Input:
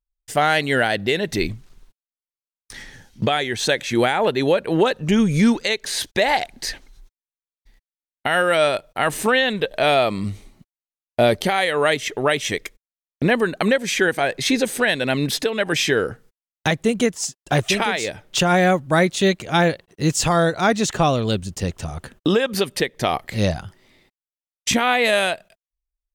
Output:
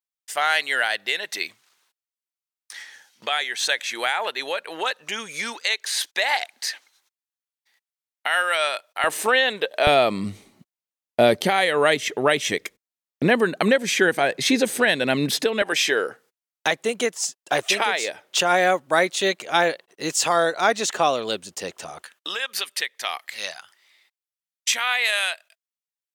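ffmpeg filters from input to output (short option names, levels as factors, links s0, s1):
-af "asetnsamples=n=441:p=0,asendcmd='9.04 highpass f 450;9.87 highpass f 160;15.62 highpass f 460;22.02 highpass f 1400',highpass=1000"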